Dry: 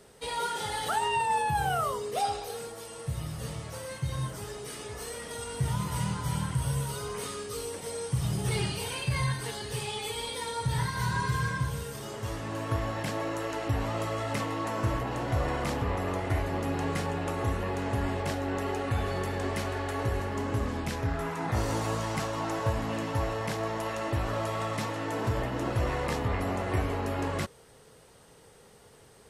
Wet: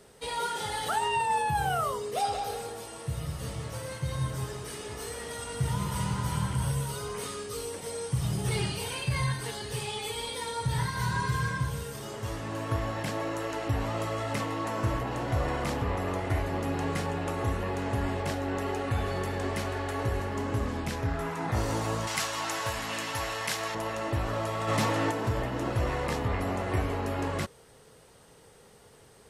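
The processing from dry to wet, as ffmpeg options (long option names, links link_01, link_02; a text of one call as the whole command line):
ffmpeg -i in.wav -filter_complex "[0:a]asettb=1/sr,asplit=3[link_01][link_02][link_03];[link_01]atrim=end=2.144[link_04];[link_02]atrim=start=2.14:end=6.72,asetpts=PTS-STARTPTS,afade=type=in:duration=0.004:curve=qsin,afade=type=out:start_time=4.576:duration=0.004:curve=qsin,asplit=2[link_05][link_06];[link_06]adelay=184,lowpass=frequency=3700:poles=1,volume=-5dB,asplit=2[link_07][link_08];[link_08]adelay=184,lowpass=frequency=3700:poles=1,volume=0.36,asplit=2[link_09][link_10];[link_10]adelay=184,lowpass=frequency=3700:poles=1,volume=0.36,asplit=2[link_11][link_12];[link_12]adelay=184,lowpass=frequency=3700:poles=1,volume=0.36[link_13];[link_05][link_07][link_09][link_11][link_13]amix=inputs=5:normalize=0,atrim=end_sample=201978[link_14];[link_03]atrim=start=6.716[link_15];[link_04][link_14]acrossfade=duration=0.004:curve1=hsin:curve2=qsin[link_16];[link_16][link_15]acrossfade=duration=0.004:curve1=qsin:curve2=hsin,asettb=1/sr,asplit=3[link_17][link_18][link_19];[link_17]atrim=end=22.074[link_20];[link_18]atrim=start=22.07:end=23.75,asetpts=PTS-STARTPTS,afade=type=in:duration=0.004:curve=qsin,afade=type=out:start_time=1.676:duration=0.004:curve=qsin,tiltshelf=frequency=970:gain=-9.5[link_21];[link_19]atrim=start=23.746[link_22];[link_20][link_21]acrossfade=duration=0.004:curve1=hsin:curve2=qsin[link_23];[link_23][link_22]acrossfade=duration=0.004:curve1=qsin:curve2=hsin,asplit=3[link_24][link_25][link_26];[link_24]afade=type=out:start_time=24.67:duration=0.02[link_27];[link_25]aeval=exprs='0.119*sin(PI/2*1.41*val(0)/0.119)':channel_layout=same,afade=type=in:start_time=24.67:duration=0.02,afade=type=out:start_time=25.1:duration=0.02[link_28];[link_26]afade=type=in:start_time=25.1:duration=0.02[link_29];[link_27][link_28][link_29]amix=inputs=3:normalize=0" out.wav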